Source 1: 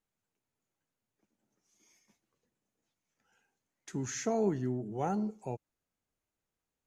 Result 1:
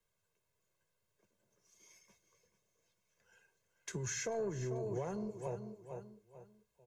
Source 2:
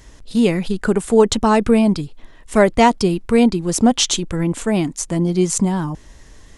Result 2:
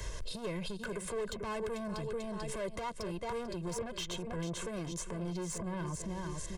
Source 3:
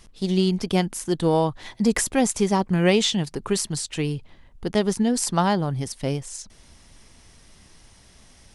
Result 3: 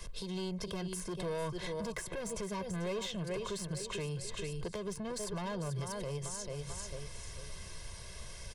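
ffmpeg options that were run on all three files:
-filter_complex "[0:a]asplit=2[s0][s1];[s1]aecho=0:1:441|882|1323:0.224|0.0716|0.0229[s2];[s0][s2]amix=inputs=2:normalize=0,acrossover=split=120|2300[s3][s4][s5];[s3]acompressor=threshold=0.00794:ratio=4[s6];[s4]acompressor=threshold=0.126:ratio=4[s7];[s5]acompressor=threshold=0.0158:ratio=4[s8];[s6][s7][s8]amix=inputs=3:normalize=0,acrossover=split=130[s9][s10];[s9]bandreject=f=62.16:t=h:w=4,bandreject=f=124.32:t=h:w=4,bandreject=f=186.48:t=h:w=4,bandreject=f=248.64:t=h:w=4,bandreject=f=310.8:t=h:w=4,bandreject=f=372.96:t=h:w=4,bandreject=f=435.12:t=h:w=4,bandreject=f=497.28:t=h:w=4,bandreject=f=559.44:t=h:w=4,bandreject=f=621.6:t=h:w=4,bandreject=f=683.76:t=h:w=4,bandreject=f=745.92:t=h:w=4,bandreject=f=808.08:t=h:w=4,bandreject=f=870.24:t=h:w=4,bandreject=f=932.4:t=h:w=4,bandreject=f=994.56:t=h:w=4,bandreject=f=1056.72:t=h:w=4,bandreject=f=1118.88:t=h:w=4,bandreject=f=1181.04:t=h:w=4,bandreject=f=1243.2:t=h:w=4,bandreject=f=1305.36:t=h:w=4,bandreject=f=1367.52:t=h:w=4,bandreject=f=1429.68:t=h:w=4,bandreject=f=1491.84:t=h:w=4,bandreject=f=1554:t=h:w=4,bandreject=f=1616.16:t=h:w=4,bandreject=f=1678.32:t=h:w=4,bandreject=f=1740.48:t=h:w=4,bandreject=f=1802.64:t=h:w=4,bandreject=f=1864.8:t=h:w=4,bandreject=f=1926.96:t=h:w=4,bandreject=f=1989.12:t=h:w=4,bandreject=f=2051.28:t=h:w=4[s11];[s10]asoftclip=type=tanh:threshold=0.0631[s12];[s11][s12]amix=inputs=2:normalize=0,acompressor=threshold=0.0158:ratio=5,aecho=1:1:1.9:0.84,alimiter=level_in=2.51:limit=0.0631:level=0:latency=1:release=226,volume=0.398,volume=1.26"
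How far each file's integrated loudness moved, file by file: -6.0 LU, -22.0 LU, -16.5 LU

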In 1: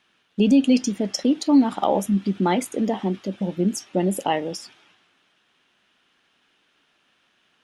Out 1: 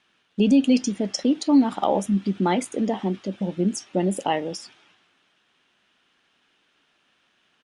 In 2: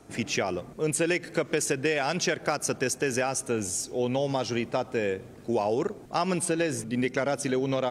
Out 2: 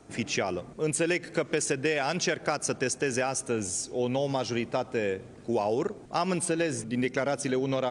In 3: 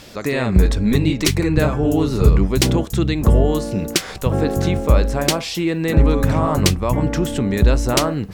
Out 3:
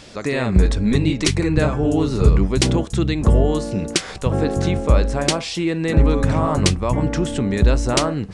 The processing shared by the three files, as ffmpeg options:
-af "aresample=22050,aresample=44100,volume=0.891"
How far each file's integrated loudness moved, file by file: -1.0 LU, -1.0 LU, -1.0 LU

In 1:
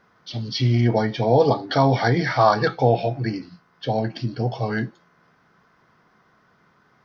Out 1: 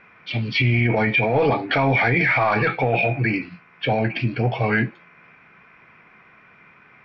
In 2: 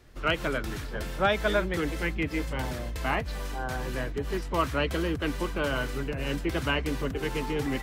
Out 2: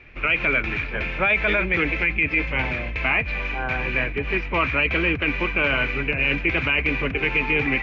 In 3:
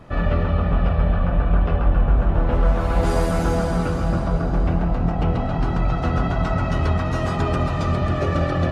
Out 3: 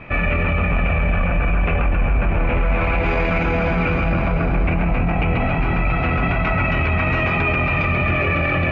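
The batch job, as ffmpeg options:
-filter_complex "[0:a]asplit=2[s0][s1];[s1]aeval=exprs='clip(val(0),-1,0.075)':c=same,volume=0.355[s2];[s0][s2]amix=inputs=2:normalize=0,lowpass=f=2400:t=q:w=14,alimiter=limit=0.237:level=0:latency=1:release=15,volume=1.19" -ar 22050 -c:a mp2 -b:a 96k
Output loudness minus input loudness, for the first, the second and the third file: +1.0 LU, +8.5 LU, +2.0 LU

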